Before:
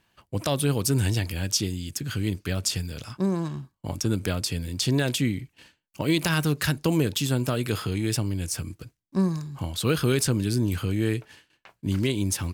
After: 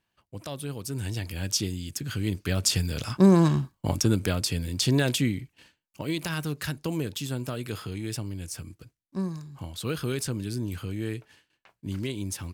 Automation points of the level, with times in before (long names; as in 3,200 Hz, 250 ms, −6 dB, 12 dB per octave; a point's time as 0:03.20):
0:00.86 −11 dB
0:01.48 −2 dB
0:02.19 −2 dB
0:03.50 +10 dB
0:04.24 +0.5 dB
0:05.10 +0.5 dB
0:06.13 −7 dB